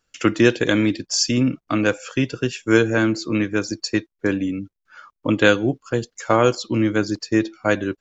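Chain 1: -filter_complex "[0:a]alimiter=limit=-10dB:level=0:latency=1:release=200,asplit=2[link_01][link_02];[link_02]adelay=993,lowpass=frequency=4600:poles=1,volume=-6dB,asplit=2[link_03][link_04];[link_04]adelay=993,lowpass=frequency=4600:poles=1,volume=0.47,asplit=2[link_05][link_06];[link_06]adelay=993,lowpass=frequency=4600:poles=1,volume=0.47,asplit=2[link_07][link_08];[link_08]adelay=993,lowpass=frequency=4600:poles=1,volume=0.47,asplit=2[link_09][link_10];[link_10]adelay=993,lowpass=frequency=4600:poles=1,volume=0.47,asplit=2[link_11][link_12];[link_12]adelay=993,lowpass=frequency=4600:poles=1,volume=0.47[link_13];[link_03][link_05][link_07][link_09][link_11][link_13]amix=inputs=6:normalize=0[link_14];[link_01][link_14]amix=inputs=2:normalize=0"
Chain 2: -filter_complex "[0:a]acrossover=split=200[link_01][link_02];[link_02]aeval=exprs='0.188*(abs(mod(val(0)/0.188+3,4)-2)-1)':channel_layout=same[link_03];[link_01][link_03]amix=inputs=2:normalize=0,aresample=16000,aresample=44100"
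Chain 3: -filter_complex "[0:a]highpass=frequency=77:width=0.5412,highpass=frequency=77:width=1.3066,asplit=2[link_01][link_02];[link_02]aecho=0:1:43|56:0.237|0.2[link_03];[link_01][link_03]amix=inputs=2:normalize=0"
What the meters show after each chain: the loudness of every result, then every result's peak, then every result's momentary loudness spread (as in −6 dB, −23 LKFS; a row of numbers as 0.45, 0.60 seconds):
−23.0, −22.5, −20.5 LKFS; −7.0, −9.5, −1.5 dBFS; 5, 6, 8 LU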